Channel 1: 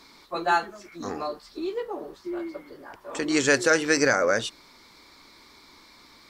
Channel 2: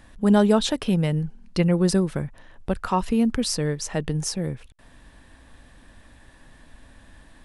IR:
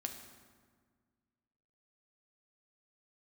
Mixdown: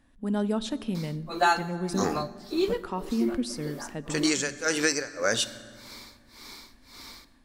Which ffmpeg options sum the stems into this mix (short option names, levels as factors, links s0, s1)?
-filter_complex "[0:a]highshelf=f=4600:g=10,tremolo=f=1.8:d=0.99,adelay=950,volume=0.841,asplit=2[s0][s1];[s1]volume=0.562[s2];[1:a]equalizer=f=270:w=3.8:g=9,volume=0.141,asplit=2[s3][s4];[s4]volume=0.473[s5];[2:a]atrim=start_sample=2205[s6];[s2][s5]amix=inputs=2:normalize=0[s7];[s7][s6]afir=irnorm=-1:irlink=0[s8];[s0][s3][s8]amix=inputs=3:normalize=0,dynaudnorm=f=120:g=5:m=1.5,alimiter=limit=0.266:level=0:latency=1:release=475"